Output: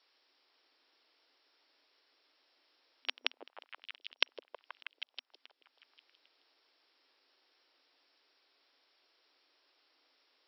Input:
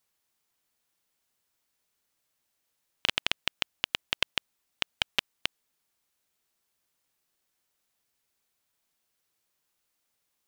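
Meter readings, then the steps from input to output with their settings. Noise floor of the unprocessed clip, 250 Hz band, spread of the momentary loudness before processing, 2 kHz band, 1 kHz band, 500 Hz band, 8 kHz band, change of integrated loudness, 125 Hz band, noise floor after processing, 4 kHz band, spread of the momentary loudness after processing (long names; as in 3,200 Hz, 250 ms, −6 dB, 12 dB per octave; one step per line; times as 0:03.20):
−79 dBFS, −14.5 dB, 7 LU, −9.5 dB, −10.5 dB, −7.5 dB, below −30 dB, −8.5 dB, below −40 dB, −81 dBFS, −9.0 dB, 19 LU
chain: volume swells 433 ms
high-shelf EQ 4,100 Hz +6.5 dB
echo through a band-pass that steps 160 ms, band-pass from 400 Hz, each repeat 0.7 octaves, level 0 dB
brick-wall band-pass 250–5,600 Hz
level +8.5 dB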